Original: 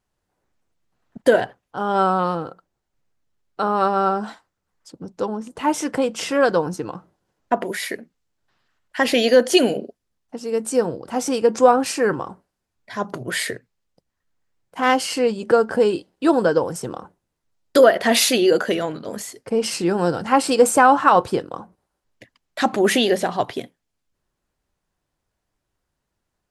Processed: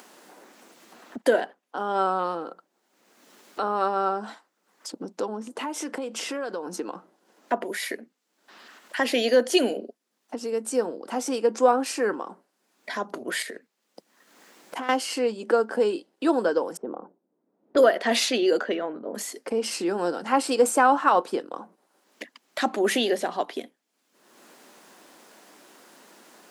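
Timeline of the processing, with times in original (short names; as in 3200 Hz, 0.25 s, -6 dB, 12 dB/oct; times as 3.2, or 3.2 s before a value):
5.51–6.75 compressor 3:1, threshold -28 dBFS
13.42–14.89 compressor 5:1, threshold -29 dBFS
16.77–19.15 low-pass opened by the level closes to 430 Hz, open at -11 dBFS
whole clip: steep high-pass 220 Hz 36 dB/oct; upward compressor, threshold -20 dBFS; gain -5.5 dB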